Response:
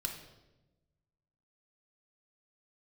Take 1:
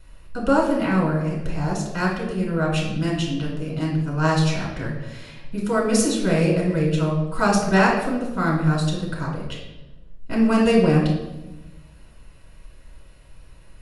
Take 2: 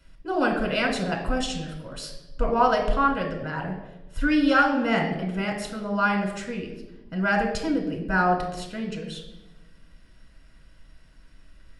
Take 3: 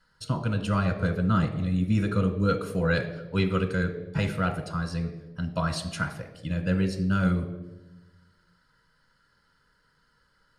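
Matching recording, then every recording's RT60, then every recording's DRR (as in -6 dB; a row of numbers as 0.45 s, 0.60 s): 2; 1.0 s, 1.0 s, 1.1 s; -3.5 dB, 2.0 dB, 7.0 dB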